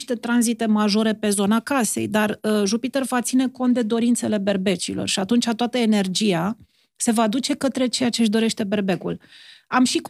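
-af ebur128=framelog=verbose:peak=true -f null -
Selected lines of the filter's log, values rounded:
Integrated loudness:
  I:         -21.0 LUFS
  Threshold: -31.2 LUFS
Loudness range:
  LRA:         1.1 LU
  Threshold: -41.2 LUFS
  LRA low:   -21.8 LUFS
  LRA high:  -20.7 LUFS
True peak:
  Peak:       -5.2 dBFS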